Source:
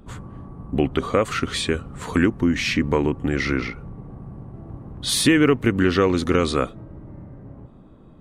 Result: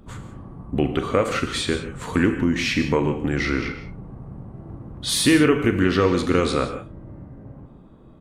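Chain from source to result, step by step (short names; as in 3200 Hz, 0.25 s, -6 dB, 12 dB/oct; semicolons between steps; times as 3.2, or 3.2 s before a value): doubler 40 ms -13 dB; non-linear reverb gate 0.2 s flat, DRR 7 dB; gain -1 dB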